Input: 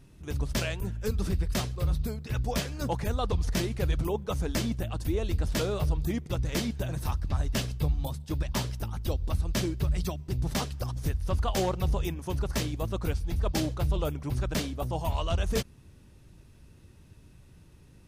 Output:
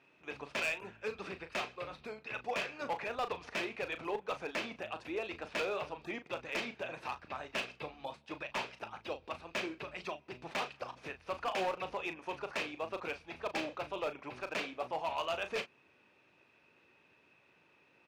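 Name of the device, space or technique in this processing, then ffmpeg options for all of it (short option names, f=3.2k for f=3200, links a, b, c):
megaphone: -filter_complex "[0:a]highpass=560,lowpass=2.6k,equalizer=f=2.5k:t=o:w=0.24:g=11,asoftclip=type=hard:threshold=-29.5dB,asplit=2[a][b];[b]adelay=37,volume=-10.5dB[c];[a][c]amix=inputs=2:normalize=0"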